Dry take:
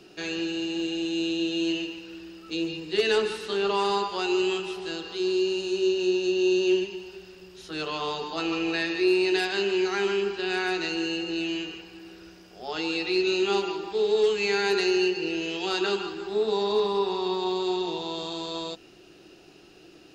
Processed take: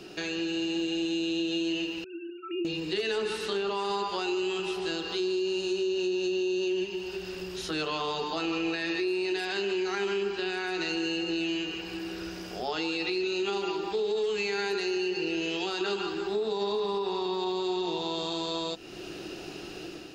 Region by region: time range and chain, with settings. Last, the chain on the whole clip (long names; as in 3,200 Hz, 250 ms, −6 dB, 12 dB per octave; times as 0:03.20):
0:02.04–0:02.65: three sine waves on the formant tracks + tuned comb filter 190 Hz, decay 0.49 s
whole clip: automatic gain control gain up to 6.5 dB; brickwall limiter −14 dBFS; downward compressor 2.5 to 1, threshold −40 dBFS; level +5.5 dB